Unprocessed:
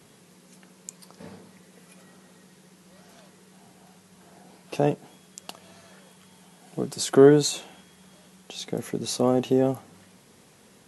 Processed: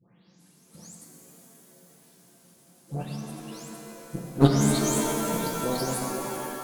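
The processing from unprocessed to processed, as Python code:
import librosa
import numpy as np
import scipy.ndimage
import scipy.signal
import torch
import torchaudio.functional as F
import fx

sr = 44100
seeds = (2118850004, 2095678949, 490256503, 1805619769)

y = fx.spec_delay(x, sr, highs='late', ms=656)
y = fx.highpass(y, sr, hz=110.0, slope=6)
y = fx.bass_treble(y, sr, bass_db=10, treble_db=13)
y = fx.level_steps(y, sr, step_db=14)
y = fx.stretch_vocoder_free(y, sr, factor=0.61)
y = fx.cheby_harmonics(y, sr, harmonics=(3, 4), levels_db=(-13, -23), full_scale_db=-11.0)
y = fx.rev_shimmer(y, sr, seeds[0], rt60_s=3.1, semitones=7, shimmer_db=-2, drr_db=1.5)
y = F.gain(torch.from_numpy(y), 8.0).numpy()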